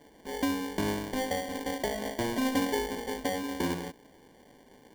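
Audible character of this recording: aliases and images of a low sample rate 1300 Hz, jitter 0%

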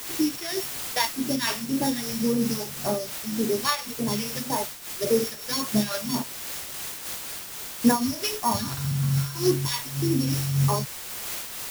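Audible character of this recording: a buzz of ramps at a fixed pitch in blocks of 8 samples; phasing stages 2, 1.8 Hz, lowest notch 230–3200 Hz; a quantiser's noise floor 6-bit, dither triangular; noise-modulated level

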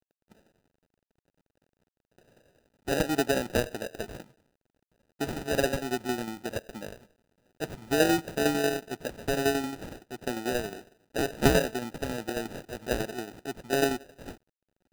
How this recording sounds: a quantiser's noise floor 12-bit, dither none; tremolo saw down 11 Hz, depth 60%; aliases and images of a low sample rate 1100 Hz, jitter 0%

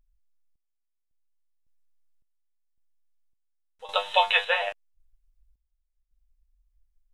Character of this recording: random-step tremolo 1.8 Hz, depth 85%

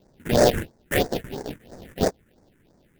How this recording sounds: aliases and images of a low sample rate 1200 Hz, jitter 20%; phasing stages 4, 3 Hz, lowest notch 690–3000 Hz

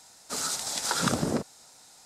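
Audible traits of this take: noise floor -55 dBFS; spectral tilt -3.0 dB/oct

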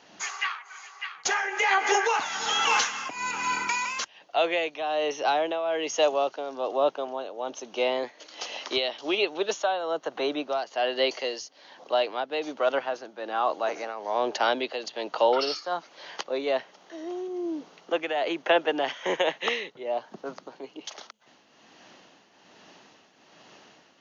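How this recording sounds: tremolo triangle 1.2 Hz, depth 70%

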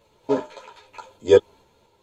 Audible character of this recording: random-step tremolo 4.3 Hz; a shimmering, thickened sound

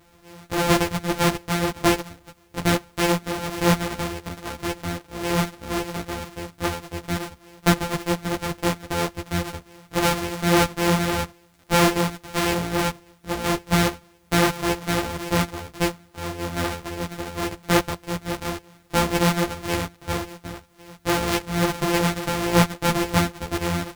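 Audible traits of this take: a buzz of ramps at a fixed pitch in blocks of 256 samples; tremolo triangle 1.7 Hz, depth 35%; a quantiser's noise floor 12-bit, dither triangular; a shimmering, thickened sound

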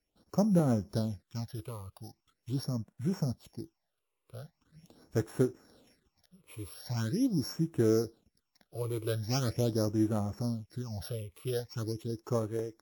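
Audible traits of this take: a buzz of ramps at a fixed pitch in blocks of 8 samples; phasing stages 8, 0.42 Hz, lowest notch 210–4800 Hz; WMA

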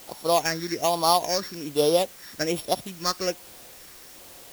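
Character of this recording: a buzz of ramps at a fixed pitch in blocks of 8 samples; phasing stages 6, 1.2 Hz, lowest notch 750–2000 Hz; a quantiser's noise floor 8-bit, dither triangular; IMA ADPCM

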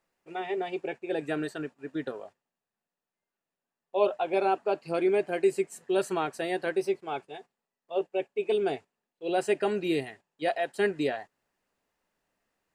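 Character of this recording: noise floor -90 dBFS; spectral tilt -3.5 dB/oct

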